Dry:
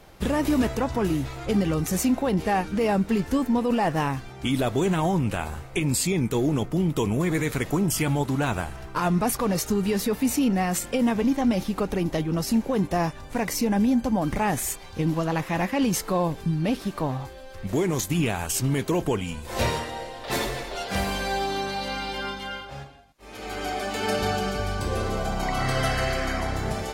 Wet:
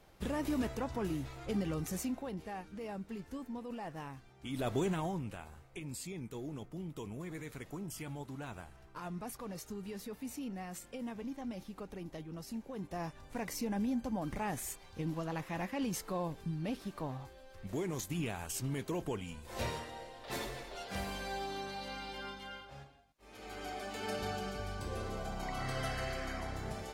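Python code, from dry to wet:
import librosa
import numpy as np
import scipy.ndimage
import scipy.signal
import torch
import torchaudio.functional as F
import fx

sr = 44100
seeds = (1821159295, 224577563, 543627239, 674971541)

y = fx.gain(x, sr, db=fx.line((1.85, -12.0), (2.49, -20.0), (4.41, -20.0), (4.72, -8.0), (5.45, -19.5), (12.72, -19.5), (13.21, -13.0)))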